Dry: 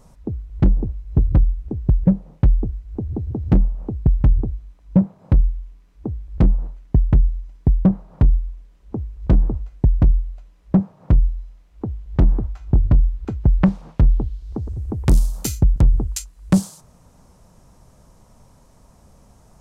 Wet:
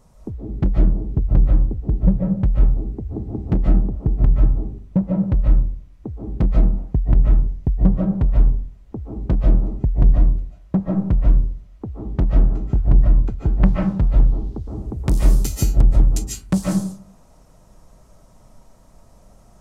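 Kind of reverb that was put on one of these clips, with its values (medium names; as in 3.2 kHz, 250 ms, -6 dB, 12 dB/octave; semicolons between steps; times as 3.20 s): algorithmic reverb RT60 0.52 s, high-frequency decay 0.4×, pre-delay 105 ms, DRR -2.5 dB; trim -4 dB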